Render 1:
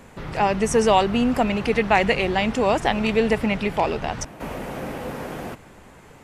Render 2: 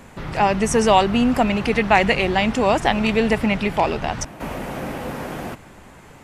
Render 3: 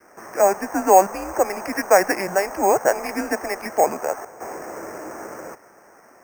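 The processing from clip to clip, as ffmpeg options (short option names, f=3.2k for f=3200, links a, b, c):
-af "equalizer=f=460:t=o:w=0.41:g=-3.5,volume=3dB"
-af "adynamicequalizer=threshold=0.0224:dfrequency=970:dqfactor=2.4:tfrequency=970:tqfactor=2.4:attack=5:release=100:ratio=0.375:range=4:mode=boostabove:tftype=bell,highpass=f=510:t=q:w=0.5412,highpass=f=510:t=q:w=1.307,lowpass=f=2.2k:t=q:w=0.5176,lowpass=f=2.2k:t=q:w=0.7071,lowpass=f=2.2k:t=q:w=1.932,afreqshift=-190,acrusher=samples=6:mix=1:aa=0.000001,volume=-1.5dB"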